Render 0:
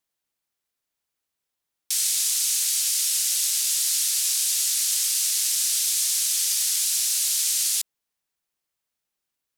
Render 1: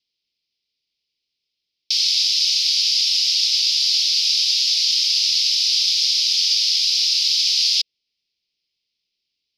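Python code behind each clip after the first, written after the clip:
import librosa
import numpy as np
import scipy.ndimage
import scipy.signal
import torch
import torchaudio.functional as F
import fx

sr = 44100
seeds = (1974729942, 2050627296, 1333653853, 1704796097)

y = fx.curve_eq(x, sr, hz=(470.0, 670.0, 1300.0, 1800.0, 3000.0, 5100.0, 7800.0), db=(0, -14, -25, -13, 0, 7, -28))
y = fx.rider(y, sr, range_db=10, speed_s=0.5)
y = fx.high_shelf_res(y, sr, hz=1800.0, db=7.0, q=3.0)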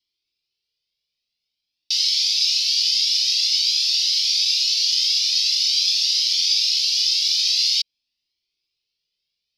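y = fx.comb_cascade(x, sr, direction='rising', hz=0.48)
y = y * 10.0 ** (3.0 / 20.0)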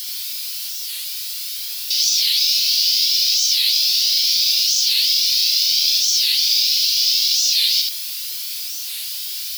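y = x + 0.5 * 10.0 ** (-21.0 / 20.0) * np.diff(np.sign(x), prepend=np.sign(x[:1]))
y = y + 10.0 ** (-3.5 / 20.0) * np.pad(y, (int(72 * sr / 1000.0), 0))[:len(y)]
y = fx.record_warp(y, sr, rpm=45.0, depth_cents=250.0)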